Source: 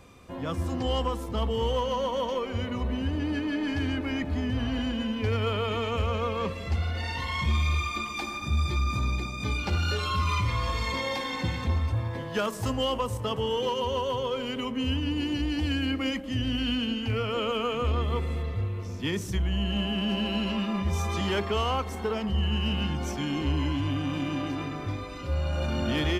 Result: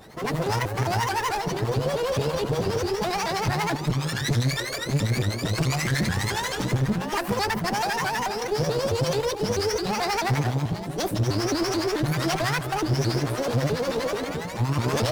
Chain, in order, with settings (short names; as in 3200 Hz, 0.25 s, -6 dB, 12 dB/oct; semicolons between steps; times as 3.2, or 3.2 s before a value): rattling part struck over -29 dBFS, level -36 dBFS; notches 50/100 Hz; in parallel at -4 dB: sample-rate reducer 2100 Hz; on the sum: one-sided clip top -32 dBFS, bottom -19 dBFS; harmonic tremolo 7.1 Hz, depth 70%, crossover 430 Hz; speed mistake 45 rpm record played at 78 rpm; shaped vibrato saw up 4.6 Hz, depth 250 cents; gain +6 dB